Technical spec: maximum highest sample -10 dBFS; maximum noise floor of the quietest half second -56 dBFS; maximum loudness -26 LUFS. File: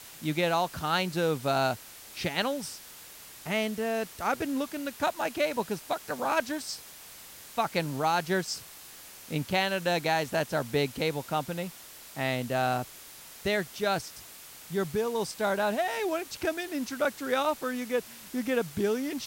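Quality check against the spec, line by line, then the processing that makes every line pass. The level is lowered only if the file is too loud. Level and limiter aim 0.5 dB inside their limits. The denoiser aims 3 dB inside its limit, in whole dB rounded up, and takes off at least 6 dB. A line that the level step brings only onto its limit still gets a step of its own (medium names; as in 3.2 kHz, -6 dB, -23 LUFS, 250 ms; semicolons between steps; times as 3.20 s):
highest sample -13.0 dBFS: pass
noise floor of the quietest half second -48 dBFS: fail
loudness -30.0 LUFS: pass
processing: noise reduction 11 dB, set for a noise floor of -48 dBFS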